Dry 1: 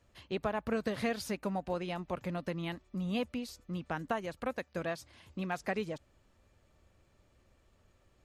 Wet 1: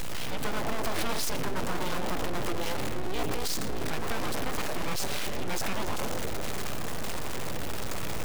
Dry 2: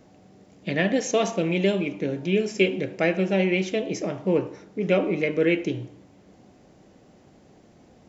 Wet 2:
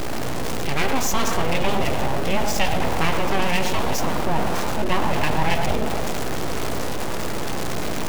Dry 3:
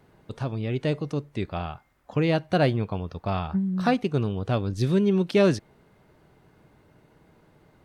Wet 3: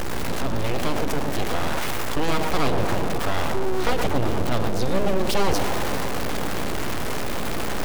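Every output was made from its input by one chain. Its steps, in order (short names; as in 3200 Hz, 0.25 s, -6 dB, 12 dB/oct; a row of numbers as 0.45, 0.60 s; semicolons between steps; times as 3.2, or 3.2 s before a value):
zero-crossing step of -26 dBFS; hum 60 Hz, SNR 15 dB; on a send: tape echo 0.116 s, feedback 85%, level -8.5 dB, low-pass 1400 Hz; on the sum: full-wave rectifier; fast leveller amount 50%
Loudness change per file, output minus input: +4.0, +0.5, 0.0 LU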